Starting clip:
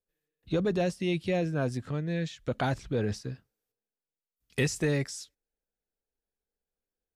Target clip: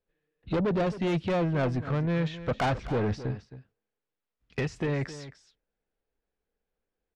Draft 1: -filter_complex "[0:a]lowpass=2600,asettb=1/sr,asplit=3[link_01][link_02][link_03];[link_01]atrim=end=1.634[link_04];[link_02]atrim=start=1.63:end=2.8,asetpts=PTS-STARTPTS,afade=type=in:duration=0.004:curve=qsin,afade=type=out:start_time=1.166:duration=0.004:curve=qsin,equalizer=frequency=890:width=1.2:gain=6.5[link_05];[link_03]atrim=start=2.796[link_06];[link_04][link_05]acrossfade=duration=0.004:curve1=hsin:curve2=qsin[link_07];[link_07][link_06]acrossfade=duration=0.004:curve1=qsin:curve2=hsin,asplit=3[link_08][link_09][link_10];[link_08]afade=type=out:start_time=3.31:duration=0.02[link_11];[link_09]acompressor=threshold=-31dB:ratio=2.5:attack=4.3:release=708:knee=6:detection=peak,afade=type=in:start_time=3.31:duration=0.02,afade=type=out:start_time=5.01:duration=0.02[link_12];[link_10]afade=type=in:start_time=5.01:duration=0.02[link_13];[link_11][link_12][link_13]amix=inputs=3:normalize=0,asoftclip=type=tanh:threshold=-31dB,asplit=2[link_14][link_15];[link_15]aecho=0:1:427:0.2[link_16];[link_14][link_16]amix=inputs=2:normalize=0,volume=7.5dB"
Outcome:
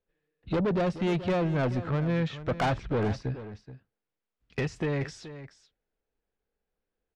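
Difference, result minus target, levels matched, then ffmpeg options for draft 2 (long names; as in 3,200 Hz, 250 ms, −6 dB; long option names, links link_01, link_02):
echo 161 ms late
-filter_complex "[0:a]lowpass=2600,asettb=1/sr,asplit=3[link_01][link_02][link_03];[link_01]atrim=end=1.634[link_04];[link_02]atrim=start=1.63:end=2.8,asetpts=PTS-STARTPTS,afade=type=in:duration=0.004:curve=qsin,afade=type=out:start_time=1.166:duration=0.004:curve=qsin,equalizer=frequency=890:width=1.2:gain=6.5[link_05];[link_03]atrim=start=2.796[link_06];[link_04][link_05]acrossfade=duration=0.004:curve1=hsin:curve2=qsin[link_07];[link_07][link_06]acrossfade=duration=0.004:curve1=qsin:curve2=hsin,asplit=3[link_08][link_09][link_10];[link_08]afade=type=out:start_time=3.31:duration=0.02[link_11];[link_09]acompressor=threshold=-31dB:ratio=2.5:attack=4.3:release=708:knee=6:detection=peak,afade=type=in:start_time=3.31:duration=0.02,afade=type=out:start_time=5.01:duration=0.02[link_12];[link_10]afade=type=in:start_time=5.01:duration=0.02[link_13];[link_11][link_12][link_13]amix=inputs=3:normalize=0,asoftclip=type=tanh:threshold=-31dB,asplit=2[link_14][link_15];[link_15]aecho=0:1:266:0.2[link_16];[link_14][link_16]amix=inputs=2:normalize=0,volume=7.5dB"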